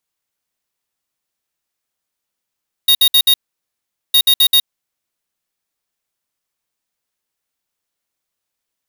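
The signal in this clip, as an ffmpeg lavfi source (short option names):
-f lavfi -i "aevalsrc='0.316*(2*lt(mod(3750*t,1),0.5)-1)*clip(min(mod(mod(t,1.26),0.13),0.07-mod(mod(t,1.26),0.13))/0.005,0,1)*lt(mod(t,1.26),0.52)':d=2.52:s=44100"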